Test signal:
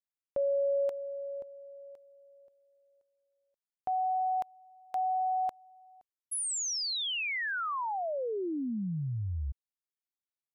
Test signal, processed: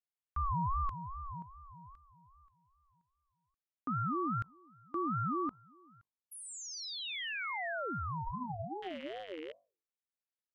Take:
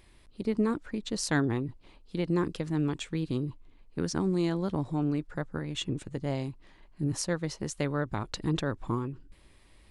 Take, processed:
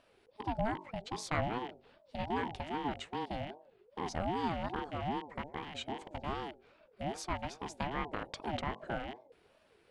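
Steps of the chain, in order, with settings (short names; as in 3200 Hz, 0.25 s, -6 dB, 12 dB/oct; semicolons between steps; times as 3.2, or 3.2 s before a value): rattling part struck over -37 dBFS, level -32 dBFS; LPF 2500 Hz 6 dB/oct; low shelf 210 Hz -8.5 dB; notches 50/100/150/200/250/300/350/400/450/500 Hz; ring modulator with a swept carrier 510 Hz, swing 25%, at 2.5 Hz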